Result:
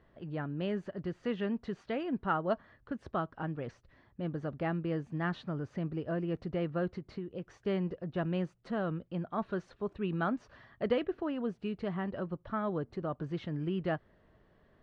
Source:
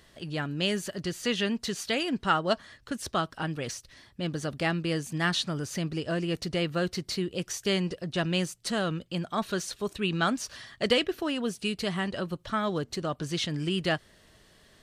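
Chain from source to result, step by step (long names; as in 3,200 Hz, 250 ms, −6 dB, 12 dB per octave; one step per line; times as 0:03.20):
low-pass filter 1,300 Hz 12 dB per octave
0:06.93–0:07.58: downward compressor, threshold −32 dBFS, peak gain reduction 7 dB
level −4 dB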